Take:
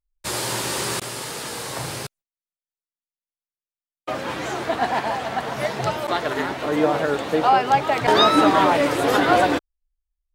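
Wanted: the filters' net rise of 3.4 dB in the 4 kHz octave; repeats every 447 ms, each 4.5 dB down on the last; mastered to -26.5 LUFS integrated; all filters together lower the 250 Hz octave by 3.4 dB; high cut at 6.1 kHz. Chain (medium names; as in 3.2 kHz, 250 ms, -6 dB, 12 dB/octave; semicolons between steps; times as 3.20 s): low-pass 6.1 kHz; peaking EQ 250 Hz -4.5 dB; peaking EQ 4 kHz +4.5 dB; feedback delay 447 ms, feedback 60%, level -4.5 dB; trim -7 dB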